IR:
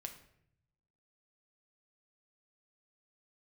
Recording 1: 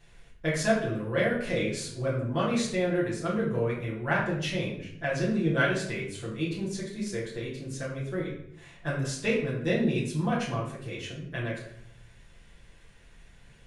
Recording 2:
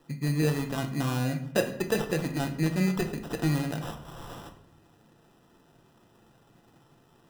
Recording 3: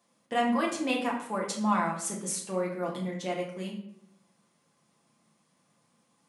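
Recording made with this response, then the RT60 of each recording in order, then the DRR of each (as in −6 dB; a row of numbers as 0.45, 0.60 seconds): 2; 0.70, 0.70, 0.70 seconds; −8.0, 4.0, −3.0 decibels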